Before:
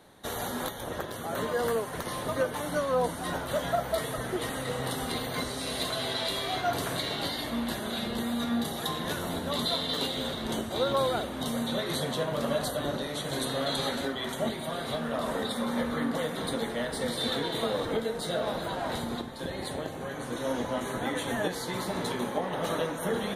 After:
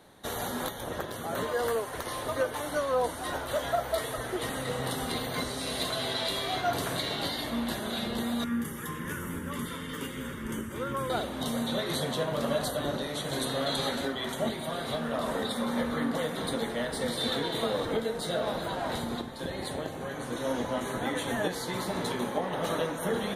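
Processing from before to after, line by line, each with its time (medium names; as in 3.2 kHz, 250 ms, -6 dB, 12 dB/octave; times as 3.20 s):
1.43–4.43 s: peaking EQ 180 Hz -10.5 dB
8.44–11.10 s: static phaser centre 1.7 kHz, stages 4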